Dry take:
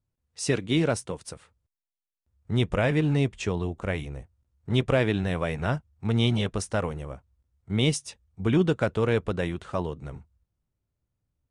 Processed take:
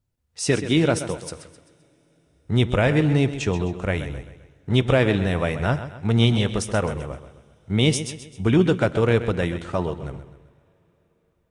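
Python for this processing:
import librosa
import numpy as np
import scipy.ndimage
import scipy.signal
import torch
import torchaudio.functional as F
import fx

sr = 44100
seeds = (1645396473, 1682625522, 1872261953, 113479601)

p1 = fx.notch(x, sr, hz=1100.0, q=23.0)
p2 = p1 + fx.echo_feedback(p1, sr, ms=130, feedback_pct=43, wet_db=-12.0, dry=0)
p3 = fx.rev_double_slope(p2, sr, seeds[0], early_s=0.55, late_s=4.7, knee_db=-18, drr_db=18.5)
y = p3 * librosa.db_to_amplitude(4.5)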